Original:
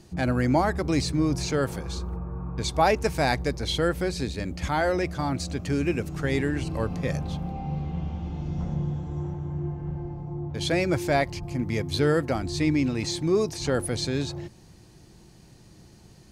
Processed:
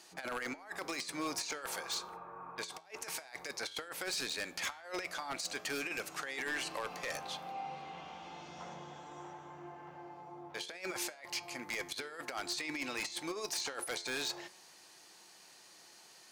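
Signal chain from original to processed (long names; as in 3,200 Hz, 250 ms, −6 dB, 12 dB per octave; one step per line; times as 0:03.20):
high-pass filter 890 Hz 12 dB per octave
compressor whose output falls as the input rises −37 dBFS, ratio −0.5
wave folding −28 dBFS
flanger 0.53 Hz, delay 9.2 ms, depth 2.8 ms, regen +88%
level +3 dB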